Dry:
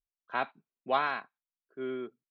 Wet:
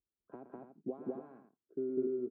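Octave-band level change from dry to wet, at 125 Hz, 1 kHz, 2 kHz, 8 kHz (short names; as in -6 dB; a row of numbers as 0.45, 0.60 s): -1.5 dB, -24.0 dB, under -30 dB, n/a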